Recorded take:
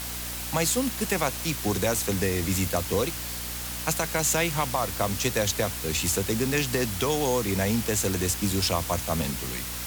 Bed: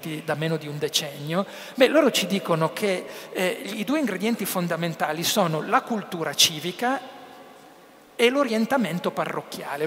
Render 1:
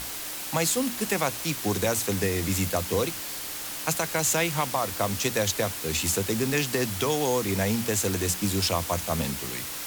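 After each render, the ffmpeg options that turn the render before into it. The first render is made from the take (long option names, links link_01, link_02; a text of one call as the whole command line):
ffmpeg -i in.wav -af "bandreject=frequency=60:width_type=h:width=6,bandreject=frequency=120:width_type=h:width=6,bandreject=frequency=180:width_type=h:width=6,bandreject=frequency=240:width_type=h:width=6" out.wav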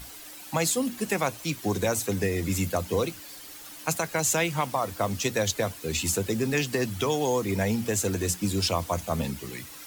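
ffmpeg -i in.wav -af "afftdn=noise_reduction=11:noise_floor=-35" out.wav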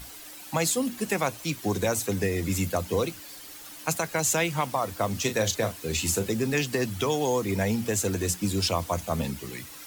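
ffmpeg -i in.wav -filter_complex "[0:a]asettb=1/sr,asplit=3[link_01][link_02][link_03];[link_01]atrim=end=5.124[link_04];[link_02]atrim=start=5.12:end=6.29,asetpts=PTS-STARTPTS,afade=type=in:duration=0.004:curve=qsin,afade=type=out:start_time=1.166:duration=0.004:curve=qsin,asplit=2[link_05][link_06];[link_06]adelay=36,volume=-10dB[link_07];[link_05][link_07]amix=inputs=2:normalize=0,atrim=end_sample=51597[link_08];[link_03]atrim=start=6.286[link_09];[link_04][link_08]acrossfade=duration=0.004:curve1=hsin:curve2=qsin[link_10];[link_10][link_09]acrossfade=duration=0.004:curve1=qsin:curve2=hsin" out.wav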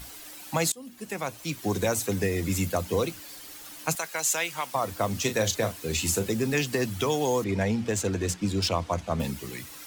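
ffmpeg -i in.wav -filter_complex "[0:a]asettb=1/sr,asplit=3[link_01][link_02][link_03];[link_01]atrim=end=3.954[link_04];[link_02]atrim=start=3.95:end=4.75,asetpts=PTS-STARTPTS,afade=type=in:duration=0.004:curve=qsin,afade=type=out:start_time=0.796:duration=0.004:curve=qsin,highpass=frequency=1100:poles=1[link_05];[link_03]atrim=start=4.746[link_06];[link_04][link_05]acrossfade=duration=0.004:curve1=hsin:curve2=qsin[link_07];[link_07][link_06]acrossfade=duration=0.004:curve1=qsin:curve2=hsin,asettb=1/sr,asplit=3[link_08][link_09][link_10];[link_08]atrim=end=7.444[link_11];[link_09]atrim=start=7.44:end=9.2,asetpts=PTS-STARTPTS,afade=type=in:duration=0.004:curve=qsin,afade=type=out:start_time=1.756:duration=0.004:curve=qsin,adynamicsmooth=sensitivity=5:basefreq=4400[link_12];[link_10]atrim=start=9.196[link_13];[link_11][link_12]acrossfade=duration=0.004:curve1=hsin:curve2=qsin[link_14];[link_14][link_13]acrossfade=duration=0.004:curve1=qsin:curve2=hsin,asplit=2[link_15][link_16];[link_15]atrim=end=0.72,asetpts=PTS-STARTPTS,afade=type=out:start_time=0.716:duration=0.004:curve=hsin:silence=0.0707946[link_17];[link_16]atrim=start=0.72,asetpts=PTS-STARTPTS,afade=type=in:duration=1.03:silence=0.0707946[link_18];[link_17][link_18]concat=n=2:v=0:a=1" out.wav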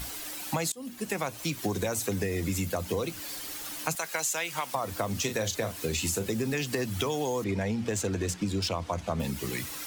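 ffmpeg -i in.wav -filter_complex "[0:a]asplit=2[link_01][link_02];[link_02]alimiter=limit=-19dB:level=0:latency=1,volume=-1.5dB[link_03];[link_01][link_03]amix=inputs=2:normalize=0,acompressor=threshold=-27dB:ratio=6" out.wav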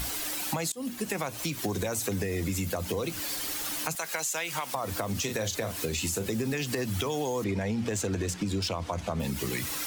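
ffmpeg -i in.wav -filter_complex "[0:a]acompressor=threshold=-31dB:ratio=6,asplit=2[link_01][link_02];[link_02]alimiter=level_in=5dB:limit=-24dB:level=0:latency=1,volume=-5dB,volume=-1dB[link_03];[link_01][link_03]amix=inputs=2:normalize=0" out.wav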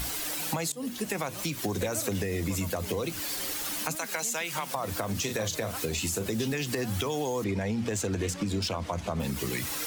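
ffmpeg -i in.wav -i bed.wav -filter_complex "[1:a]volume=-23dB[link_01];[0:a][link_01]amix=inputs=2:normalize=0" out.wav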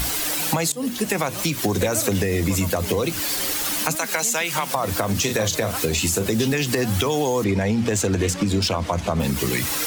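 ffmpeg -i in.wav -af "volume=9dB" out.wav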